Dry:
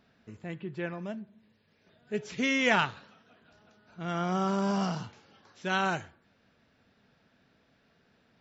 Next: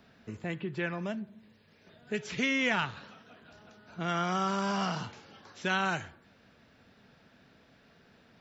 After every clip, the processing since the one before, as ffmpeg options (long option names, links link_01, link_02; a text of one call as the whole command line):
ffmpeg -i in.wav -filter_complex "[0:a]acrossover=split=240|1100|3900[link_01][link_02][link_03][link_04];[link_01]acompressor=threshold=-45dB:ratio=4[link_05];[link_02]acompressor=threshold=-42dB:ratio=4[link_06];[link_03]acompressor=threshold=-36dB:ratio=4[link_07];[link_04]acompressor=threshold=-54dB:ratio=4[link_08];[link_05][link_06][link_07][link_08]amix=inputs=4:normalize=0,volume=6dB" out.wav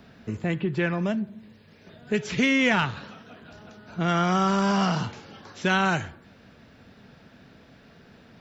ffmpeg -i in.wav -filter_complex "[0:a]lowshelf=frequency=410:gain=5,asplit=2[link_01][link_02];[link_02]asoftclip=type=tanh:threshold=-25dB,volume=-10dB[link_03];[link_01][link_03]amix=inputs=2:normalize=0,volume=4dB" out.wav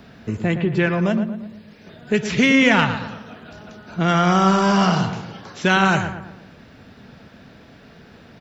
ffmpeg -i in.wav -filter_complex "[0:a]asplit=2[link_01][link_02];[link_02]adelay=115,lowpass=frequency=2200:poles=1,volume=-8.5dB,asplit=2[link_03][link_04];[link_04]adelay=115,lowpass=frequency=2200:poles=1,volume=0.46,asplit=2[link_05][link_06];[link_06]adelay=115,lowpass=frequency=2200:poles=1,volume=0.46,asplit=2[link_07][link_08];[link_08]adelay=115,lowpass=frequency=2200:poles=1,volume=0.46,asplit=2[link_09][link_10];[link_10]adelay=115,lowpass=frequency=2200:poles=1,volume=0.46[link_11];[link_01][link_03][link_05][link_07][link_09][link_11]amix=inputs=6:normalize=0,volume=6dB" out.wav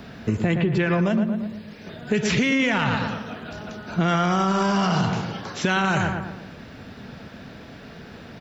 ffmpeg -i in.wav -af "alimiter=limit=-14dB:level=0:latency=1:release=29,acompressor=threshold=-22dB:ratio=6,volume=4.5dB" out.wav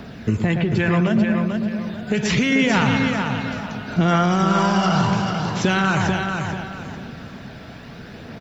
ffmpeg -i in.wav -af "aphaser=in_gain=1:out_gain=1:delay=1.5:decay=0.29:speed=0.72:type=triangular,aecho=1:1:441|882|1323|1764:0.531|0.159|0.0478|0.0143,volume=1.5dB" out.wav